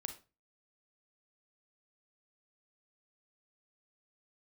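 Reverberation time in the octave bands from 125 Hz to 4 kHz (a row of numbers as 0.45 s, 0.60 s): 0.45 s, 0.35 s, 0.35 s, 0.30 s, 0.25 s, 0.25 s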